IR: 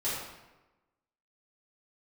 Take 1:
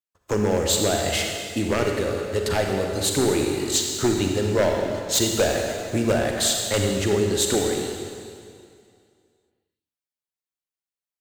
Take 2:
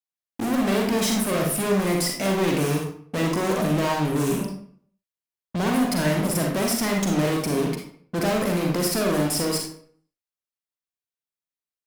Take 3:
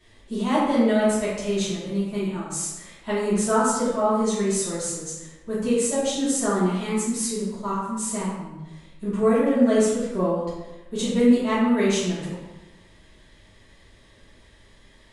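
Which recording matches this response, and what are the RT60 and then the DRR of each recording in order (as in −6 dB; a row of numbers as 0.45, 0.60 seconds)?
3; 2.3, 0.55, 1.1 seconds; 1.5, 0.5, −11.5 decibels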